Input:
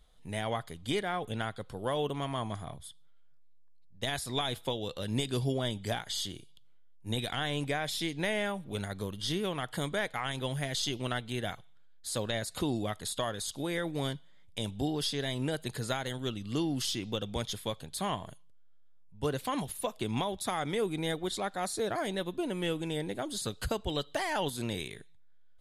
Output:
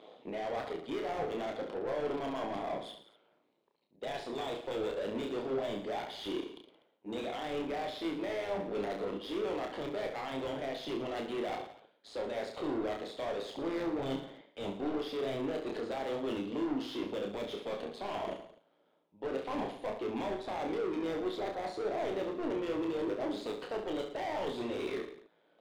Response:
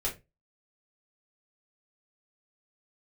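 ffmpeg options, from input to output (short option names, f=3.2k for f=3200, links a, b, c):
-filter_complex "[0:a]highpass=f=280:w=0.5412,highpass=f=280:w=1.3066,areverse,acompressor=threshold=-46dB:ratio=12,areverse,tremolo=f=110:d=0.788,adynamicsmooth=sensitivity=5.5:basefreq=530,aexciter=amount=4:drive=9.2:freq=2.3k,asplit=2[a][b];[b]highpass=f=720:p=1,volume=36dB,asoftclip=type=tanh:threshold=-34.5dB[c];[a][c]amix=inputs=2:normalize=0,lowpass=f=1.1k:p=1,volume=-6dB,aecho=1:1:30|67.5|114.4|173|246.2:0.631|0.398|0.251|0.158|0.1,volume=7dB"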